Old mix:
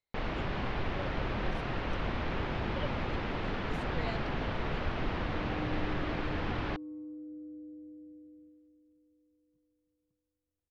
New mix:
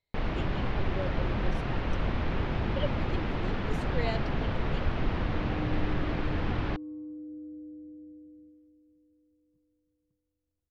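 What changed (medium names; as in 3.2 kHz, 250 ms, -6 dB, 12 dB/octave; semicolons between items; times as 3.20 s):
speech +6.0 dB; master: add bass shelf 270 Hz +6.5 dB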